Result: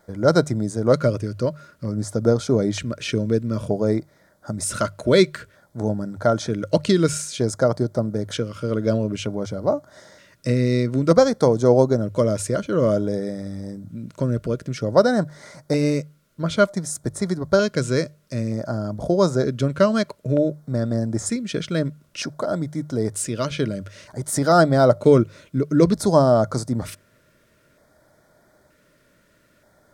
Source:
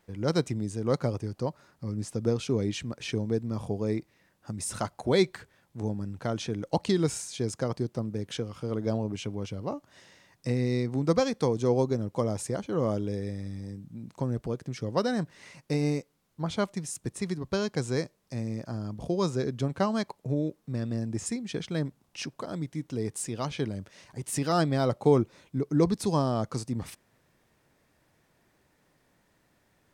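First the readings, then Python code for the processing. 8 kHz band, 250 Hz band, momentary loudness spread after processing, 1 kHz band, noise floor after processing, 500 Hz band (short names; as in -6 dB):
+8.0 dB, +8.0 dB, 12 LU, +9.0 dB, -60 dBFS, +10.5 dB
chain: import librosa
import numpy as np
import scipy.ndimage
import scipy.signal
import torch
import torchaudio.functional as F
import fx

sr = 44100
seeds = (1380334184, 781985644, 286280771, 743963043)

y = fx.filter_lfo_notch(x, sr, shape='square', hz=0.54, low_hz=780.0, high_hz=2700.0, q=1.4)
y = fx.hum_notches(y, sr, base_hz=50, count=3)
y = fx.small_body(y, sr, hz=(610.0, 1400.0), ring_ms=40, db=12)
y = F.gain(torch.from_numpy(y), 8.0).numpy()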